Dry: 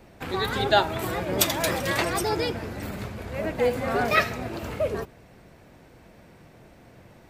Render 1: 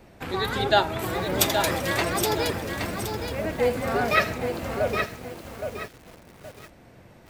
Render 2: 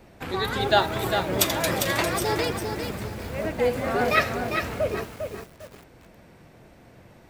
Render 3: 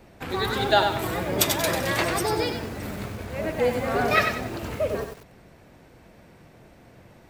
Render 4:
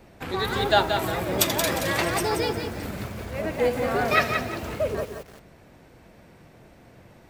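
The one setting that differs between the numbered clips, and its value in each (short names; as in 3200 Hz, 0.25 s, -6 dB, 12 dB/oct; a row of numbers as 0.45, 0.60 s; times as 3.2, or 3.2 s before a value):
lo-fi delay, time: 820, 401, 95, 177 ms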